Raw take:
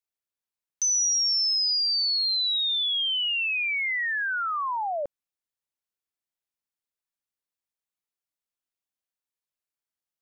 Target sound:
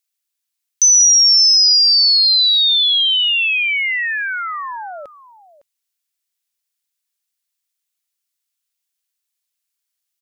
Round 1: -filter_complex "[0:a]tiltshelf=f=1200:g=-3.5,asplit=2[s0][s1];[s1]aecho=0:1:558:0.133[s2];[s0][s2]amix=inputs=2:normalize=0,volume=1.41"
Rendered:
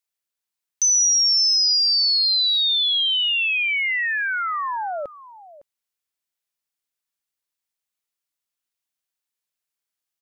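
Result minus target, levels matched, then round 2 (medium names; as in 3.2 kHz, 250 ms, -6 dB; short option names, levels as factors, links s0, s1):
1 kHz band +7.5 dB
-filter_complex "[0:a]tiltshelf=f=1200:g=-11.5,asplit=2[s0][s1];[s1]aecho=0:1:558:0.133[s2];[s0][s2]amix=inputs=2:normalize=0,volume=1.41"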